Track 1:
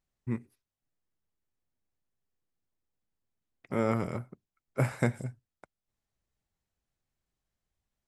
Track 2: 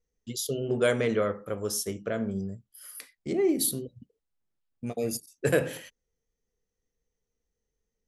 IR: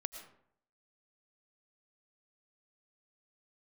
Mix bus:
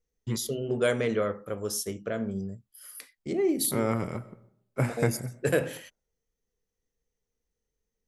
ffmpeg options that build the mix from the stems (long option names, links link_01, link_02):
-filter_complex "[0:a]agate=range=-33dB:threshold=-58dB:ratio=3:detection=peak,volume=-2.5dB,asplit=2[link_01][link_02];[link_02]volume=-4.5dB[link_03];[1:a]volume=-1dB[link_04];[2:a]atrim=start_sample=2205[link_05];[link_03][link_05]afir=irnorm=-1:irlink=0[link_06];[link_01][link_04][link_06]amix=inputs=3:normalize=0"